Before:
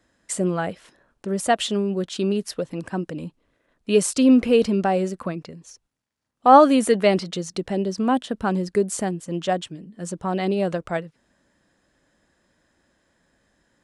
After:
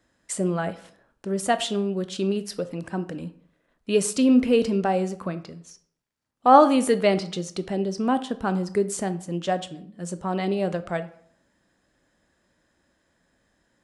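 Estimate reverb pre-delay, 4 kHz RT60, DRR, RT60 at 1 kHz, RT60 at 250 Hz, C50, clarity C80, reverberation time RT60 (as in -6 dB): 14 ms, 0.40 s, 11.5 dB, 0.60 s, 0.65 s, 15.5 dB, 19.0 dB, 0.65 s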